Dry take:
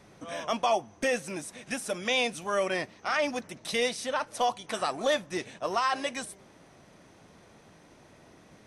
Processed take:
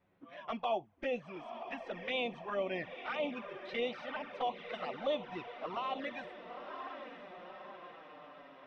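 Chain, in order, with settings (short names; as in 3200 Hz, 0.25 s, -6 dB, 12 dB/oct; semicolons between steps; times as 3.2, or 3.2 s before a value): spectral noise reduction 10 dB; diffused feedback echo 0.97 s, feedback 59%, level -9 dB; envelope flanger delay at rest 11.4 ms, full sweep at -24 dBFS; LPF 3200 Hz 24 dB/oct; gain -5.5 dB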